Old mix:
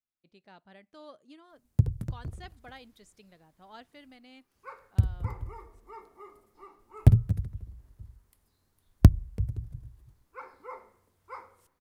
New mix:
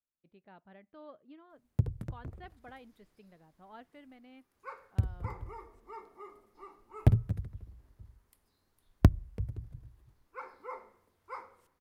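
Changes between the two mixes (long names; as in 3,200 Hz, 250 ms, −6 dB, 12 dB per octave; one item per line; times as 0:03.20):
speech: add high-frequency loss of the air 470 metres
first sound: add bass and treble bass −6 dB, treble −8 dB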